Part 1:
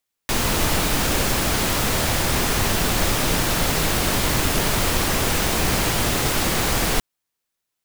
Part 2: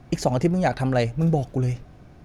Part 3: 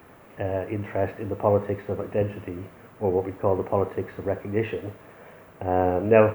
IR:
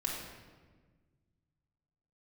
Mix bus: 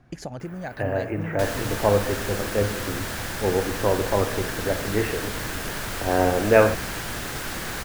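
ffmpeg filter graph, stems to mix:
-filter_complex "[0:a]adelay=1100,volume=-11dB[link_01];[1:a]acompressor=threshold=-21dB:ratio=6,volume=-9dB[link_02];[2:a]adelay=400,volume=-1.5dB,asplit=2[link_03][link_04];[link_04]volume=-10.5dB[link_05];[3:a]atrim=start_sample=2205[link_06];[link_05][link_06]afir=irnorm=-1:irlink=0[link_07];[link_01][link_02][link_03][link_07]amix=inputs=4:normalize=0,equalizer=frequency=1600:width_type=o:width=0.46:gain=7.5"

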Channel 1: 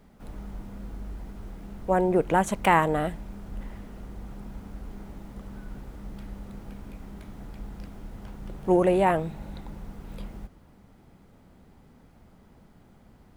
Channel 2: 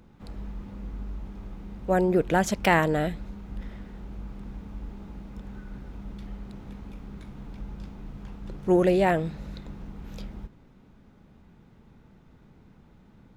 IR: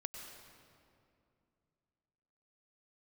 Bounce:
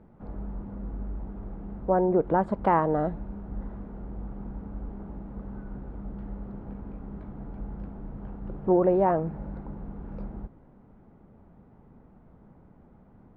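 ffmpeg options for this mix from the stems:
-filter_complex "[0:a]lowshelf=frequency=170:gain=-11.5,volume=0dB[link_01];[1:a]acompressor=threshold=-26dB:ratio=6,volume=-1dB[link_02];[link_01][link_02]amix=inputs=2:normalize=0,lowpass=1100"

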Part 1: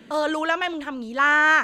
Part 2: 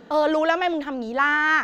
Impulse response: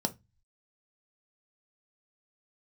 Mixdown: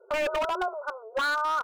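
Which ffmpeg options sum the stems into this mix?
-filter_complex "[0:a]acompressor=threshold=-20dB:ratio=8,volume=1dB[link_01];[1:a]volume=-1,adelay=4.7,volume=-9.5dB[link_02];[link_01][link_02]amix=inputs=2:normalize=0,afftfilt=real='re*between(b*sr/4096,360,1500)':imag='im*between(b*sr/4096,360,1500)':win_size=4096:overlap=0.75,afftdn=noise_reduction=18:noise_floor=-49,aeval=exprs='0.0841*(abs(mod(val(0)/0.0841+3,4)-2)-1)':channel_layout=same"

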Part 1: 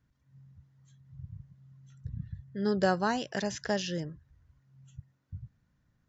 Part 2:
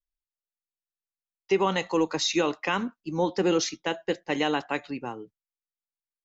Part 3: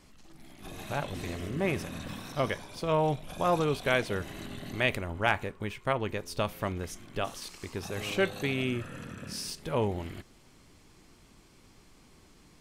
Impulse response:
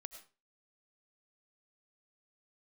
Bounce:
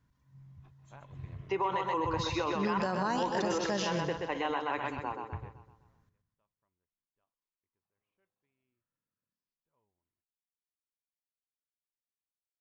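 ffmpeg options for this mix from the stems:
-filter_complex "[0:a]volume=0.5dB,asplit=3[link_01][link_02][link_03];[link_02]volume=-11dB[link_04];[1:a]bandpass=frequency=1000:width_type=q:width=0.62:csg=0,volume=-3dB,asplit=2[link_05][link_06];[link_06]volume=-5dB[link_07];[2:a]agate=range=-7dB:threshold=-47dB:ratio=16:detection=peak,lowpass=1900,tiltshelf=frequency=1400:gain=-3.5,volume=-16.5dB[link_08];[link_03]apad=whole_len=555948[link_09];[link_08][link_09]sidechaingate=range=-35dB:threshold=-58dB:ratio=16:detection=peak[link_10];[link_04][link_07]amix=inputs=2:normalize=0,aecho=0:1:127|254|381|508|635|762|889:1|0.49|0.24|0.118|0.0576|0.0282|0.0138[link_11];[link_01][link_05][link_10][link_11]amix=inputs=4:normalize=0,equalizer=frequency=1000:width=6.5:gain=9.5,alimiter=limit=-22dB:level=0:latency=1:release=51"

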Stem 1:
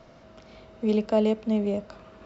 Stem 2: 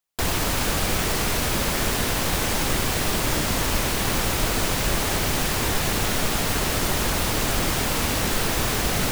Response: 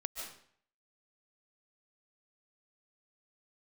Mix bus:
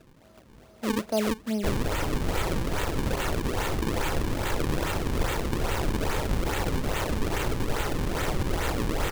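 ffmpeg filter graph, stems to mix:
-filter_complex "[0:a]volume=-4dB[link_01];[1:a]aecho=1:1:2.2:0.86,adelay=1450,volume=-7dB[link_02];[link_01][link_02]amix=inputs=2:normalize=0,acrusher=samples=38:mix=1:aa=0.000001:lfo=1:lforange=60.8:lforate=2.4"

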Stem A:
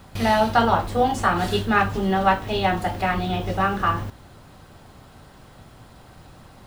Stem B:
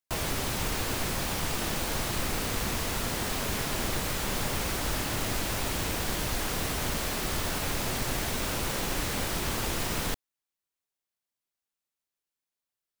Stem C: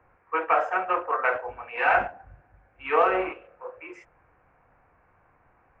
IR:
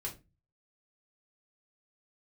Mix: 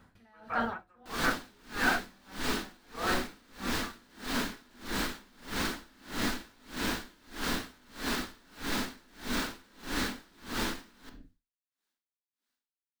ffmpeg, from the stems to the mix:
-filter_complex "[0:a]volume=-18dB,asplit=2[link_01][link_02];[link_02]volume=-4.5dB[link_03];[1:a]equalizer=frequency=125:width_type=o:width=1:gain=-7,equalizer=frequency=250:width_type=o:width=1:gain=8,equalizer=frequency=1000:width_type=o:width=1:gain=4,equalizer=frequency=4000:width_type=o:width=1:gain=8,adelay=950,volume=-1dB,asplit=2[link_04][link_05];[link_05]volume=-10dB[link_06];[2:a]volume=-12dB[link_07];[link_01][link_04]amix=inputs=2:normalize=0,equalizer=frequency=9600:width_type=o:width=0.8:gain=9,alimiter=level_in=2dB:limit=-24dB:level=0:latency=1,volume=-2dB,volume=0dB[link_08];[3:a]atrim=start_sample=2205[link_09];[link_03][link_06]amix=inputs=2:normalize=0[link_10];[link_10][link_09]afir=irnorm=-1:irlink=0[link_11];[link_07][link_08][link_11]amix=inputs=3:normalize=0,equalizer=frequency=250:width_type=o:width=0.67:gain=8,equalizer=frequency=1600:width_type=o:width=0.67:gain=9,equalizer=frequency=10000:width_type=o:width=0.67:gain=-8,aeval=exprs='val(0)*pow(10,-32*(0.5-0.5*cos(2*PI*1.6*n/s))/20)':channel_layout=same"

